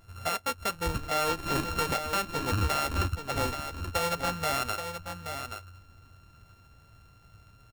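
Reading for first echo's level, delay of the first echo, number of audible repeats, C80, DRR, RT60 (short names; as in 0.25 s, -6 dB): -8.0 dB, 0.828 s, 1, none, none, none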